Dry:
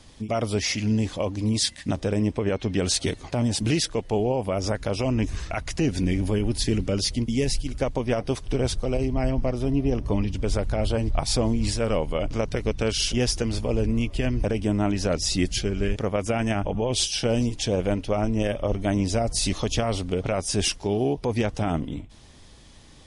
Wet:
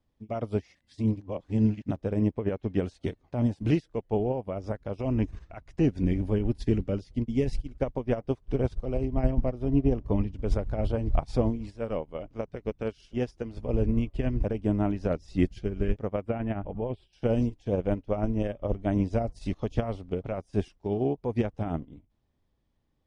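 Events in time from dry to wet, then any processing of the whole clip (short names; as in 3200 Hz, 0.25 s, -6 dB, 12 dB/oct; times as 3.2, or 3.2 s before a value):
0.75–1.82 reverse
11.5–13.57 low shelf 110 Hz -8 dB
16.21–17.13 running mean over 7 samples
whole clip: LPF 1000 Hz 6 dB/oct; upward expander 2.5:1, over -37 dBFS; gain +2.5 dB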